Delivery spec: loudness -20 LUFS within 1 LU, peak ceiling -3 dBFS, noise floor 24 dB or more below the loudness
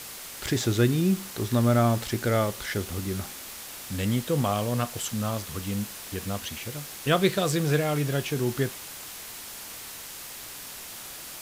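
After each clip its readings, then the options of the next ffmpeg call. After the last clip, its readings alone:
noise floor -41 dBFS; noise floor target -52 dBFS; loudness -28.0 LUFS; peak level -8.5 dBFS; loudness target -20.0 LUFS
-> -af "afftdn=nr=11:nf=-41"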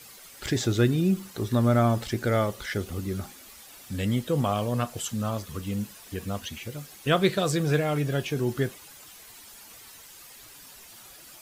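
noise floor -49 dBFS; noise floor target -52 dBFS
-> -af "afftdn=nr=6:nf=-49"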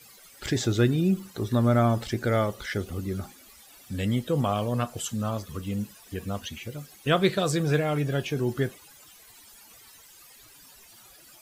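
noise floor -53 dBFS; loudness -27.5 LUFS; peak level -8.5 dBFS; loudness target -20.0 LUFS
-> -af "volume=2.37,alimiter=limit=0.708:level=0:latency=1"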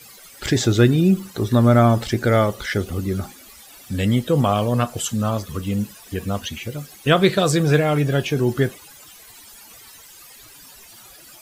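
loudness -20.0 LUFS; peak level -3.0 dBFS; noise floor -45 dBFS

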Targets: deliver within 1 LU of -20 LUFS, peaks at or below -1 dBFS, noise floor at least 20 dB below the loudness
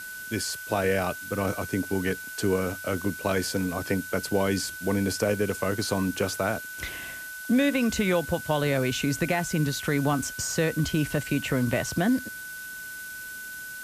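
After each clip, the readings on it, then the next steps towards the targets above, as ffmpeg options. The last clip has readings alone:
steady tone 1.5 kHz; tone level -37 dBFS; noise floor -39 dBFS; noise floor target -48 dBFS; loudness -27.5 LUFS; peak level -12.0 dBFS; loudness target -20.0 LUFS
-> -af "bandreject=f=1500:w=30"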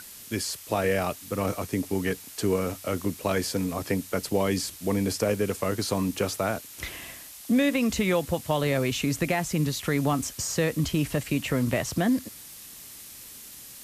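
steady tone not found; noise floor -45 dBFS; noise floor target -48 dBFS
-> -af "afftdn=nr=6:nf=-45"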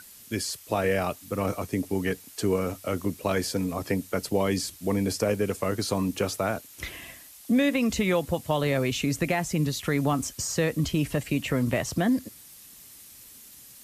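noise floor -49 dBFS; loudness -27.5 LUFS; peak level -12.5 dBFS; loudness target -20.0 LUFS
-> -af "volume=2.37"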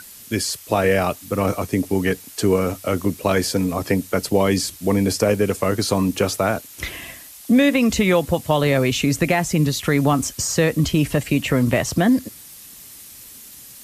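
loudness -20.0 LUFS; peak level -5.0 dBFS; noise floor -42 dBFS

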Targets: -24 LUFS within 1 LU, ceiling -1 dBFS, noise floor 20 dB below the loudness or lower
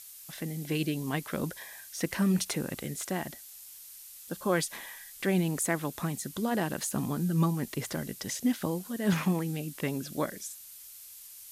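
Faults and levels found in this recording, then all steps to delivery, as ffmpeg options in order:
noise floor -49 dBFS; noise floor target -52 dBFS; loudness -32.0 LUFS; peak level -15.5 dBFS; loudness target -24.0 LUFS
-> -af "afftdn=nr=6:nf=-49"
-af "volume=2.51"

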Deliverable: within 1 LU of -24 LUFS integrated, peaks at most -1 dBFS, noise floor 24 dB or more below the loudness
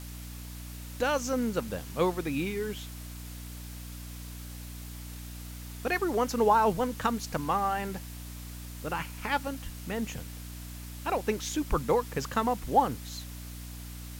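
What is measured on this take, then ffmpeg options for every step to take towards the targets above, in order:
hum 60 Hz; highest harmonic 300 Hz; hum level -40 dBFS; noise floor -42 dBFS; noise floor target -55 dBFS; loudness -30.5 LUFS; peak level -12.0 dBFS; loudness target -24.0 LUFS
-> -af "bandreject=f=60:t=h:w=4,bandreject=f=120:t=h:w=4,bandreject=f=180:t=h:w=4,bandreject=f=240:t=h:w=4,bandreject=f=300:t=h:w=4"
-af "afftdn=nr=13:nf=-42"
-af "volume=2.11"

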